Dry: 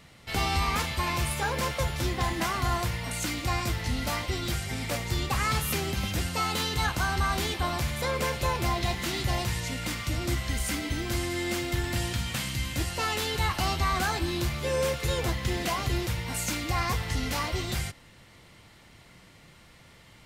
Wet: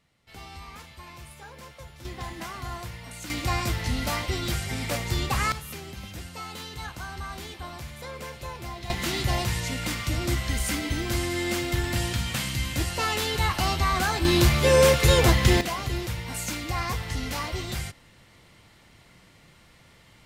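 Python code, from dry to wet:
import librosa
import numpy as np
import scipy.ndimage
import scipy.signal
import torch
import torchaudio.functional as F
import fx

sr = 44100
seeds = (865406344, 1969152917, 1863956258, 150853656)

y = fx.gain(x, sr, db=fx.steps((0.0, -16.0), (2.05, -8.0), (3.3, 2.0), (5.52, -9.5), (8.9, 2.5), (14.25, 10.0), (15.61, -1.0)))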